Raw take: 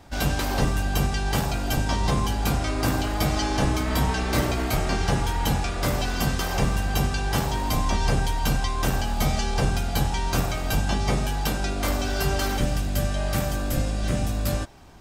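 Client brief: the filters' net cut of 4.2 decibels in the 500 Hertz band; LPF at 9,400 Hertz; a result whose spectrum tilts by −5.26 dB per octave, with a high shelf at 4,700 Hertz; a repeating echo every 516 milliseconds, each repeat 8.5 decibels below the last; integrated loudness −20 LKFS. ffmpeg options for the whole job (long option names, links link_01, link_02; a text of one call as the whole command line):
ffmpeg -i in.wav -af "lowpass=9400,equalizer=frequency=500:width_type=o:gain=-5.5,highshelf=frequency=4700:gain=-5,aecho=1:1:516|1032|1548|2064:0.376|0.143|0.0543|0.0206,volume=6dB" out.wav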